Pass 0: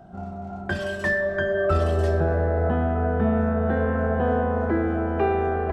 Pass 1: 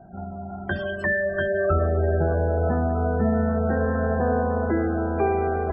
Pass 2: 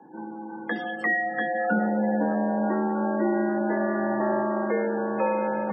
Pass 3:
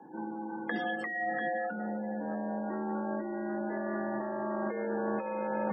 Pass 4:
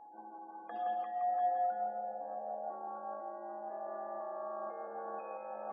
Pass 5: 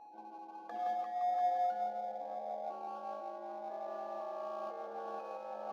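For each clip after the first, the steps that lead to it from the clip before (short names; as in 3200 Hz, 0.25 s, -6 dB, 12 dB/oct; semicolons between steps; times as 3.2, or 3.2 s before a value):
spectral gate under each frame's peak -25 dB strong
thirty-one-band EQ 630 Hz -3 dB, 1000 Hz +3 dB, 2000 Hz +5 dB; frequency shift +130 Hz; gain -2.5 dB
negative-ratio compressor -29 dBFS, ratio -1; gain -5 dB
vowel filter a; darkening echo 0.168 s, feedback 44%, low-pass 3700 Hz, level -4.5 dB; whine 840 Hz -53 dBFS; gain +1 dB
median filter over 15 samples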